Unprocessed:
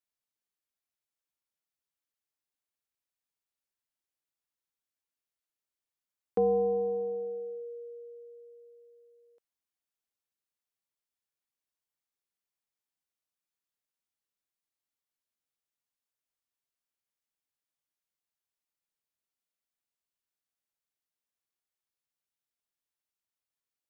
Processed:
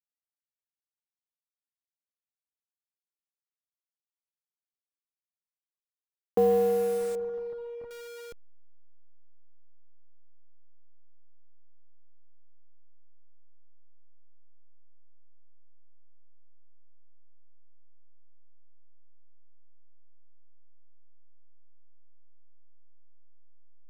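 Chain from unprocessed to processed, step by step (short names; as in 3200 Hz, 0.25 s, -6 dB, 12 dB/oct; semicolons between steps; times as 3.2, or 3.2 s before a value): level-crossing sampler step -41 dBFS; 7.15–7.91 LPF 1000 Hz 12 dB/oct; gain +3.5 dB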